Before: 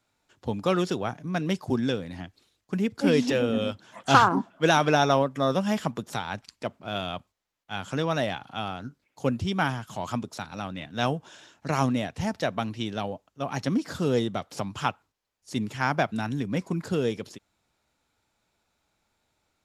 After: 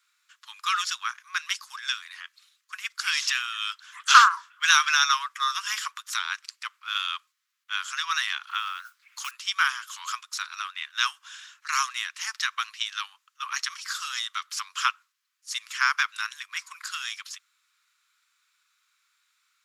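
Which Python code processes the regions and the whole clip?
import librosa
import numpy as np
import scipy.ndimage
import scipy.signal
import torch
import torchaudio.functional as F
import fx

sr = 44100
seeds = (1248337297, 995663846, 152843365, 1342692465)

y = fx.chain(x, sr, fx.high_shelf(hz=4000.0, db=-5.5),
    fx.mod_noise(seeds[0], snr_db=33),
    fx.band_squash(depth_pct=100), at=(8.48, 9.31))
y = scipy.signal.sosfilt(scipy.signal.butter(12, 1100.0, 'highpass', fs=sr, output='sos'), y)
y = fx.dynamic_eq(y, sr, hz=5900.0, q=1.4, threshold_db=-51.0, ratio=4.0, max_db=5)
y = F.gain(torch.from_numpy(y), 6.5).numpy()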